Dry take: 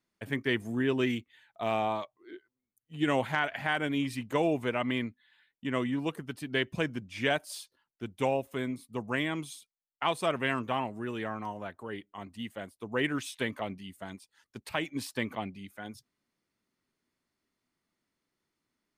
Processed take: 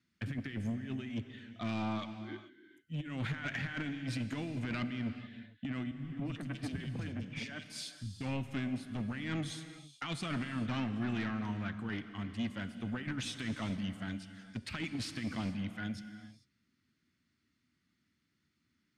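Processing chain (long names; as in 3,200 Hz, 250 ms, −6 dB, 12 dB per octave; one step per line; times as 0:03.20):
high-pass filter 60 Hz 24 dB per octave
flat-topped bell 640 Hz −12.5 dB
compressor whose output falls as the input rises −36 dBFS, ratio −0.5
low-shelf EQ 180 Hz +8 dB
soft clipping −32 dBFS, distortion −11 dB
low-pass filter 6,000 Hz 12 dB per octave
0:05.91–0:08.21: three-band delay without the direct sound lows, mids, highs 210/260 ms, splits 200/2,400 Hz
reverb whose tail is shaped and stops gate 470 ms flat, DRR 9.5 dB
level +1 dB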